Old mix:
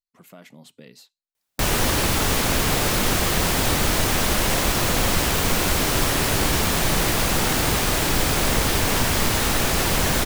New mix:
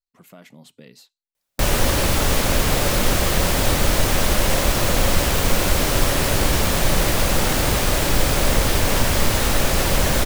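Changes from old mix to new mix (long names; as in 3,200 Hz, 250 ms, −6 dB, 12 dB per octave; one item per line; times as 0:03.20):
background: add parametric band 560 Hz +6.5 dB 0.27 octaves
master: add low-shelf EQ 70 Hz +7.5 dB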